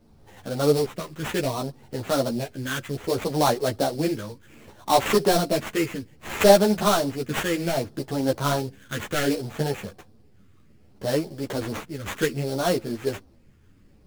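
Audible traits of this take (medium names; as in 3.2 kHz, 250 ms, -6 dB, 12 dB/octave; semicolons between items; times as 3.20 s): phasing stages 4, 0.64 Hz, lowest notch 720–4400 Hz; aliases and images of a low sample rate 4.9 kHz, jitter 20%; a shimmering, thickened sound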